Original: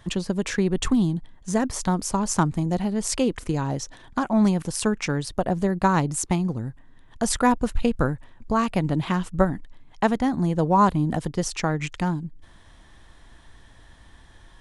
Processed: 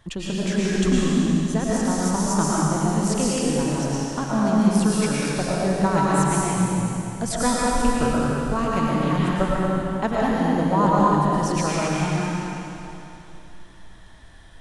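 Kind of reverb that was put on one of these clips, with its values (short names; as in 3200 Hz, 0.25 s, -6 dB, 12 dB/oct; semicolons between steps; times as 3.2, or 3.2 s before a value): digital reverb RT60 3 s, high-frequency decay 1×, pre-delay 75 ms, DRR -6.5 dB; gain -4.5 dB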